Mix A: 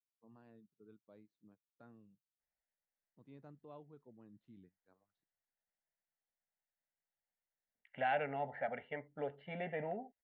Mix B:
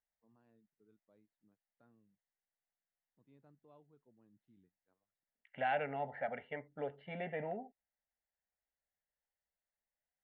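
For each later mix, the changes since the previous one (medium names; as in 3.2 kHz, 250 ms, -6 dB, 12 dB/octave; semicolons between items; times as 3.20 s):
first voice -9.0 dB; second voice: entry -2.40 s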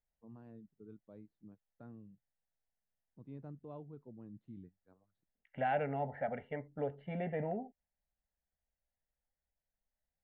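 first voice +11.0 dB; master: add tilt EQ -3 dB/octave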